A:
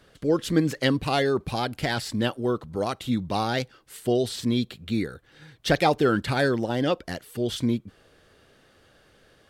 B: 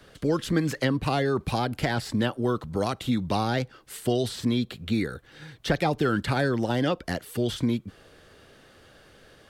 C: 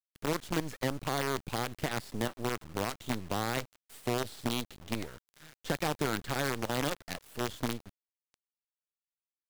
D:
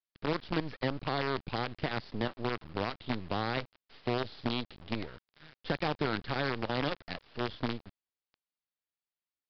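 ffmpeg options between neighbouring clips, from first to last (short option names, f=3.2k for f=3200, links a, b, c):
-filter_complex "[0:a]acrossover=split=260|790|1800[a][b][c][d];[a]acompressor=threshold=-30dB:ratio=4[e];[b]acompressor=threshold=-34dB:ratio=4[f];[c]acompressor=threshold=-36dB:ratio=4[g];[d]acompressor=threshold=-41dB:ratio=4[h];[e][f][g][h]amix=inputs=4:normalize=0,volume=4.5dB"
-af "acrusher=bits=4:dc=4:mix=0:aa=0.000001,volume=-8.5dB"
-af "aresample=11025,aresample=44100"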